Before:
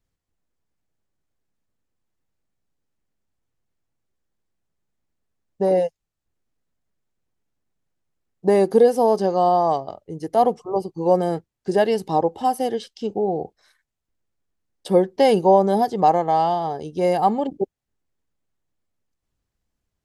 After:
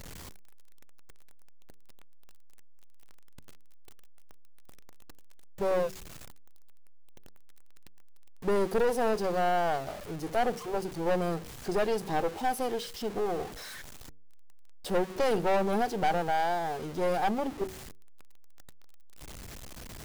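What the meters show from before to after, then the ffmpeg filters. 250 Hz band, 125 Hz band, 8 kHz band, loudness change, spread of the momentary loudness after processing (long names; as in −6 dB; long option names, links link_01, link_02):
−10.0 dB, −8.5 dB, can't be measured, −10.0 dB, 18 LU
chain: -af "aeval=exprs='val(0)+0.5*0.0376*sgn(val(0))':channel_layout=same,bandreject=frequency=94.25:width_type=h:width=4,bandreject=frequency=188.5:width_type=h:width=4,bandreject=frequency=282.75:width_type=h:width=4,bandreject=frequency=377:width_type=h:width=4,bandreject=frequency=471.25:width_type=h:width=4,aeval=exprs='(tanh(7.08*val(0)+0.65)-tanh(0.65))/7.08':channel_layout=same,volume=-5.5dB"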